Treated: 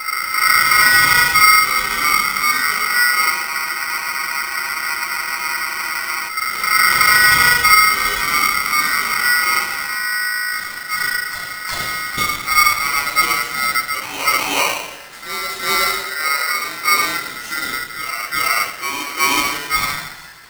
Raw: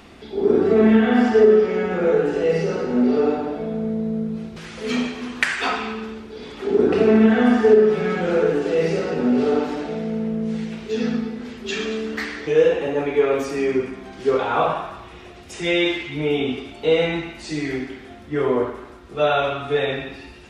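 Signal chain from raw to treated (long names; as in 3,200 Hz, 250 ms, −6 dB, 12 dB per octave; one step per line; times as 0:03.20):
backwards echo 372 ms −7.5 dB
frozen spectrum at 0:03.49, 2.80 s
ring modulator with a square carrier 1,700 Hz
level +2 dB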